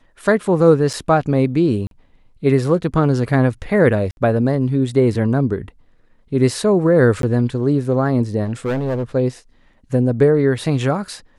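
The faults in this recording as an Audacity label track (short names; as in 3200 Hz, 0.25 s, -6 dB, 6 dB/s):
0.930000	0.940000	gap 6.3 ms
1.870000	1.910000	gap 42 ms
4.110000	4.170000	gap 61 ms
7.220000	7.230000	gap 12 ms
8.440000	9.030000	clipped -17 dBFS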